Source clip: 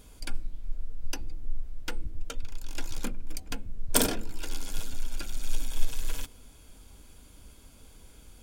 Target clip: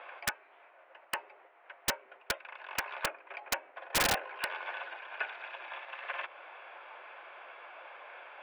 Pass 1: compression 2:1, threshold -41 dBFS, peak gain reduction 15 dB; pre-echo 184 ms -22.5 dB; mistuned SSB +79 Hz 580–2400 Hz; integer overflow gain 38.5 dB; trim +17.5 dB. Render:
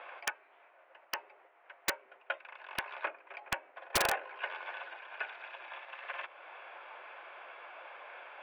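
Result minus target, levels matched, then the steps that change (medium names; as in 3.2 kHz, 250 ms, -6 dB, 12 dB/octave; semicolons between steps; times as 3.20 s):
compression: peak gain reduction +3 dB
change: compression 2:1, threshold -35 dBFS, peak gain reduction 12 dB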